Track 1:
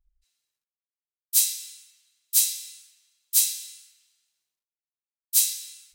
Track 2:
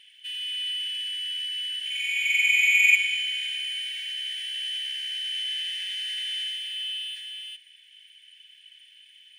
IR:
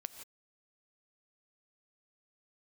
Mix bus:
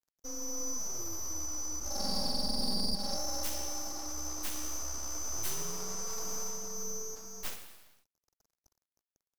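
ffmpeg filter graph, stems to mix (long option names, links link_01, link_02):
-filter_complex "[0:a]acompressor=threshold=-23dB:ratio=6,adynamicequalizer=threshold=0.00891:dfrequency=5400:dqfactor=0.7:tfrequency=5400:tqfactor=0.7:attack=5:release=100:ratio=0.375:range=2:mode=cutabove:tftype=highshelf,adelay=2100,volume=-10.5dB[link_01];[1:a]aeval=exprs='sgn(val(0))*max(abs(val(0))-0.00596,0)':channel_layout=same,volume=-1.5dB[link_02];[link_01][link_02]amix=inputs=2:normalize=0,aeval=exprs='abs(val(0))':channel_layout=same,alimiter=limit=-20.5dB:level=0:latency=1:release=290"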